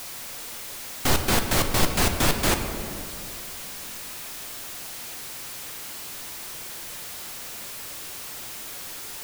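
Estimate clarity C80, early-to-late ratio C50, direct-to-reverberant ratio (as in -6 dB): 8.0 dB, 7.0 dB, 5.0 dB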